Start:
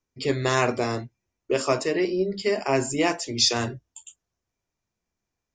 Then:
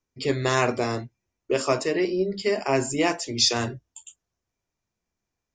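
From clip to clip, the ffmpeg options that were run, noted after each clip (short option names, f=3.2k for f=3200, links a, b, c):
-af anull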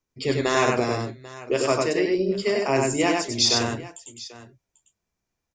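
-af "aecho=1:1:97|792:0.708|0.126"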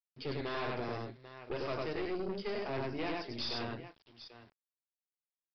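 -af "aeval=exprs='(tanh(15.8*val(0)+0.6)-tanh(0.6))/15.8':c=same,aresample=11025,aeval=exprs='val(0)*gte(abs(val(0)),0.00299)':c=same,aresample=44100,volume=-9dB"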